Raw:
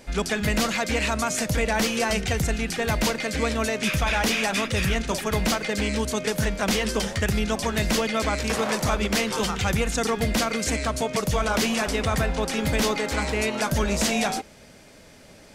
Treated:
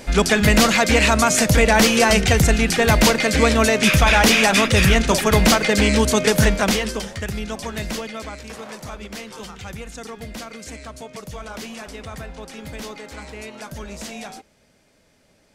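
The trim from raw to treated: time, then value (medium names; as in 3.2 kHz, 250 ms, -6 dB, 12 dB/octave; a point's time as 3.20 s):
6.50 s +9 dB
7.06 s -3.5 dB
7.85 s -3.5 dB
8.47 s -10.5 dB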